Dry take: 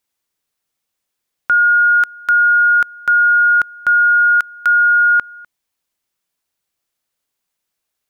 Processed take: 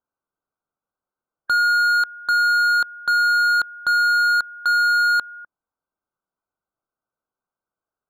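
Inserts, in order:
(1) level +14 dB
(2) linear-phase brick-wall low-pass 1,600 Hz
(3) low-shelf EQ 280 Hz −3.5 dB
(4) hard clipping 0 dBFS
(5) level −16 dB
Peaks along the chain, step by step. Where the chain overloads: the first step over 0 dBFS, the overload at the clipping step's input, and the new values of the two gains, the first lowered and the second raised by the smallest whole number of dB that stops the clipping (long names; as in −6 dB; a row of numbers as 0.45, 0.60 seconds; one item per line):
+6.0, +6.0, +6.0, 0.0, −16.0 dBFS
step 1, 6.0 dB
step 1 +8 dB, step 5 −10 dB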